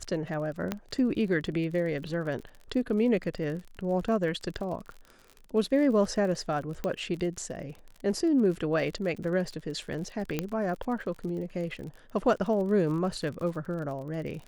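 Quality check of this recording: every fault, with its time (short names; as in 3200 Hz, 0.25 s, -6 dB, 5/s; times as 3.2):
crackle 44/s -37 dBFS
0.72 pop -15 dBFS
6.84 pop -19 dBFS
10.39 pop -14 dBFS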